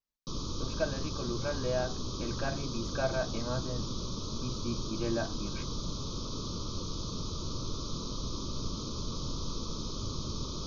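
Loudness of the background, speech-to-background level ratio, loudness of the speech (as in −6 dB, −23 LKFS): −38.0 LKFS, 1.0 dB, −37.0 LKFS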